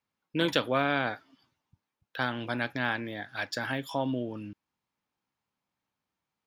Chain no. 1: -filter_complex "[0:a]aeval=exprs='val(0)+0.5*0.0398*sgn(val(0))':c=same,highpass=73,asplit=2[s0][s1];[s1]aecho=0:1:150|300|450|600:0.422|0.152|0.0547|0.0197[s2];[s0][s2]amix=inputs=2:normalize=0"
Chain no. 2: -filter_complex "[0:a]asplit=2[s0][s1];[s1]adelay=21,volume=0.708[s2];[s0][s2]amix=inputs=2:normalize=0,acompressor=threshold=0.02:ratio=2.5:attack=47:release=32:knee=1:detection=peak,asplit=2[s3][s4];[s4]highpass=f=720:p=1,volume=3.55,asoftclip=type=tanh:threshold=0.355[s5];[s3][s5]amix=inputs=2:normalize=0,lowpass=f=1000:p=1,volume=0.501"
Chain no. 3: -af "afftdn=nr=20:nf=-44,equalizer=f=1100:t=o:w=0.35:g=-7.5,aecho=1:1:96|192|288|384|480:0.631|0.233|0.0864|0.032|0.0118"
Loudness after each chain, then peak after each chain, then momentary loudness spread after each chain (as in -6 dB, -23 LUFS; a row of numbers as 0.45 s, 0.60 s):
-28.0 LUFS, -31.5 LUFS, -30.5 LUFS; -8.5 dBFS, -14.5 dBFS, -9.5 dBFS; 9 LU, 11 LU, 12 LU